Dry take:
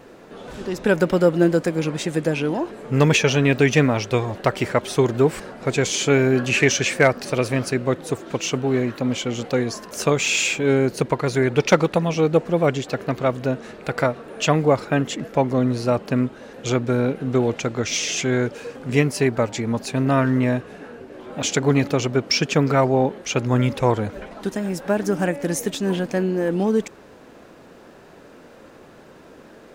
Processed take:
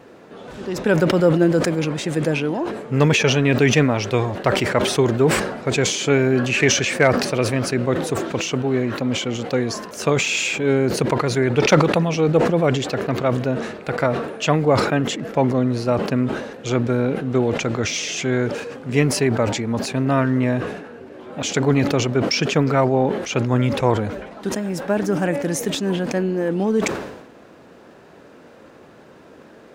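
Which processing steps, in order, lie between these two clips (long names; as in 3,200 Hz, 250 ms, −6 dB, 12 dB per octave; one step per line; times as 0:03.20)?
high-pass filter 59 Hz
high-shelf EQ 6,300 Hz −5.5 dB
level that may fall only so fast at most 58 dB per second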